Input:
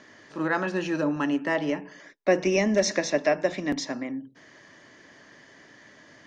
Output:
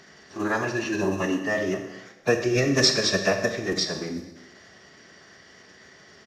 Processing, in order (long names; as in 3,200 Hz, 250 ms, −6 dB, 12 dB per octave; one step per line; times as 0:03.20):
one scale factor per block 7 bits
parametric band 6,200 Hz +14 dB 0.55 octaves
phase-vocoder pitch shift with formants kept −7.5 semitones
echo with shifted repeats 117 ms, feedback 62%, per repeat +33 Hz, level −23 dB
convolution reverb RT60 0.95 s, pre-delay 28 ms, DRR 6.5 dB